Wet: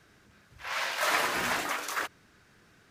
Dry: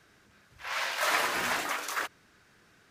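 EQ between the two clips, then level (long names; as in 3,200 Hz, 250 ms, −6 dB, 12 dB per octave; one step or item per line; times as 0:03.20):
low-shelf EQ 290 Hz +4.5 dB
0.0 dB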